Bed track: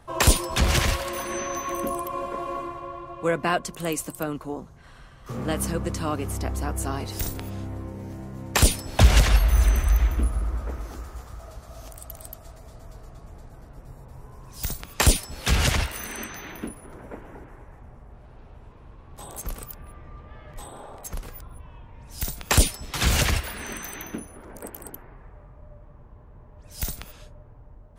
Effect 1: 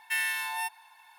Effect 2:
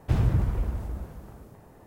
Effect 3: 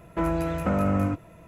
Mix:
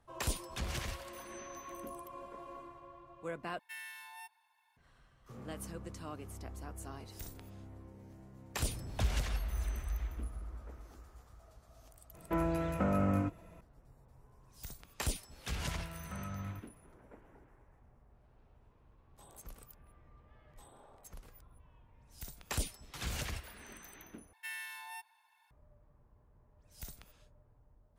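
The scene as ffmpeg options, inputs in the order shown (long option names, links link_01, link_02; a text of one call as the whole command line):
ffmpeg -i bed.wav -i cue0.wav -i cue1.wav -i cue2.wav -filter_complex "[1:a]asplit=2[link_01][link_02];[3:a]asplit=2[link_03][link_04];[0:a]volume=-17.5dB[link_05];[2:a]asoftclip=type=tanh:threshold=-24.5dB[link_06];[link_04]firequalizer=gain_entry='entry(140,0);entry(310,-17);entry(1000,-3)':delay=0.05:min_phase=1[link_07];[link_02]lowshelf=frequency=130:gain=-5.5[link_08];[link_05]asplit=3[link_09][link_10][link_11];[link_09]atrim=end=3.594[link_12];[link_01]atrim=end=1.18,asetpts=PTS-STARTPTS,volume=-17.5dB[link_13];[link_10]atrim=start=4.766:end=24.334[link_14];[link_08]atrim=end=1.18,asetpts=PTS-STARTPTS,volume=-14dB[link_15];[link_11]atrim=start=25.506[link_16];[link_06]atrim=end=1.86,asetpts=PTS-STARTPTS,volume=-16dB,afade=type=in:duration=0.004:curve=hsin,afade=type=out:start_time=1.856:duration=0.004:curve=hsin,adelay=374850S[link_17];[link_03]atrim=end=1.47,asetpts=PTS-STARTPTS,volume=-7dB,afade=type=in:duration=0.004:curve=hsin,afade=type=out:start_time=1.466:duration=0.004:curve=hsin,adelay=12140[link_18];[link_07]atrim=end=1.47,asetpts=PTS-STARTPTS,volume=-14.5dB,afade=type=in:duration=0.004:curve=hsin,afade=type=out:start_time=1.466:duration=0.004:curve=hsin,adelay=15450[link_19];[link_12][link_13]acrossfade=duration=0.004:curve1=hsin:curve2=hsin[link_20];[link_20][link_14]acrossfade=duration=0.004:curve1=hsin:curve2=hsin[link_21];[link_21][link_15]acrossfade=duration=0.004:curve1=hsin:curve2=hsin[link_22];[link_22][link_16]acrossfade=duration=0.004:curve1=hsin:curve2=hsin[link_23];[link_23][link_17][link_18][link_19]amix=inputs=4:normalize=0" out.wav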